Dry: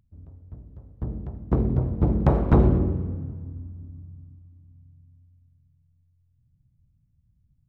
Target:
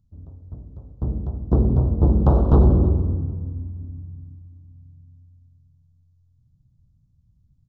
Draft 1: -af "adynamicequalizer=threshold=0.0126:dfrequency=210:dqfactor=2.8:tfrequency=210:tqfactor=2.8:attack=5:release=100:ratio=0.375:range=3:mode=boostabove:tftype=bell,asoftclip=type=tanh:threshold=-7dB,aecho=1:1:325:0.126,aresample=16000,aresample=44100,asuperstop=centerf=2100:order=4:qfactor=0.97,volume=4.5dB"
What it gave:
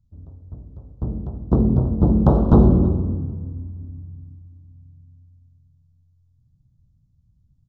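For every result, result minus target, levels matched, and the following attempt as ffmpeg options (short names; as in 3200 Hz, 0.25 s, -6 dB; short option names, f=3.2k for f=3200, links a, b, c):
soft clip: distortion -9 dB; 250 Hz band +3.5 dB
-af "adynamicequalizer=threshold=0.0126:dfrequency=210:dqfactor=2.8:tfrequency=210:tqfactor=2.8:attack=5:release=100:ratio=0.375:range=3:mode=boostabove:tftype=bell,asoftclip=type=tanh:threshold=-13dB,aecho=1:1:325:0.126,aresample=16000,aresample=44100,asuperstop=centerf=2100:order=4:qfactor=0.97,volume=4.5dB"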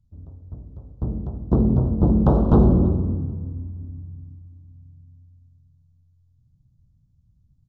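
250 Hz band +4.0 dB
-af "adynamicequalizer=threshold=0.0126:dfrequency=70:dqfactor=2.8:tfrequency=70:tqfactor=2.8:attack=5:release=100:ratio=0.375:range=3:mode=boostabove:tftype=bell,asoftclip=type=tanh:threshold=-13dB,aecho=1:1:325:0.126,aresample=16000,aresample=44100,asuperstop=centerf=2100:order=4:qfactor=0.97,volume=4.5dB"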